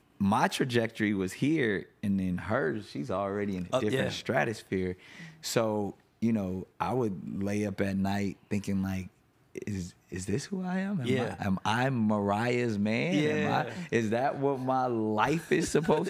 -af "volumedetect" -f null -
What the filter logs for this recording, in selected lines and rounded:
mean_volume: -30.0 dB
max_volume: -10.2 dB